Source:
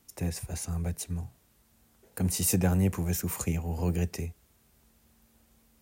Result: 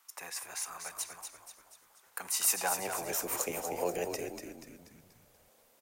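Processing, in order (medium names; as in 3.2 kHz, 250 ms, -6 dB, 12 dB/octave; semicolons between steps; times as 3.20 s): high-pass sweep 1.1 kHz -> 550 Hz, 2.47–3.19 s; frequency-shifting echo 241 ms, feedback 48%, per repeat -68 Hz, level -7 dB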